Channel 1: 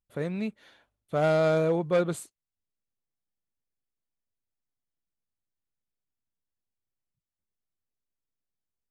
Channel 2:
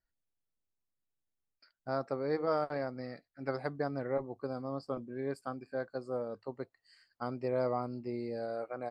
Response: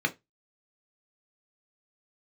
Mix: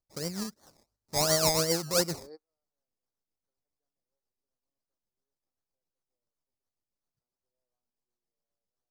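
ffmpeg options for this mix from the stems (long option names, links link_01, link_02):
-filter_complex "[0:a]acrusher=samples=24:mix=1:aa=0.000001:lfo=1:lforange=14.4:lforate=2.8,tremolo=f=7.5:d=0.52,volume=-2dB,asplit=2[link_01][link_02];[1:a]highpass=320,equalizer=frequency=2500:width=0.57:gain=-10,volume=-13dB[link_03];[link_02]apad=whole_len=392569[link_04];[link_03][link_04]sidechaingate=range=-46dB:threshold=-59dB:ratio=16:detection=peak[link_05];[link_01][link_05]amix=inputs=2:normalize=0,highshelf=frequency=3900:width_type=q:width=3:gain=8"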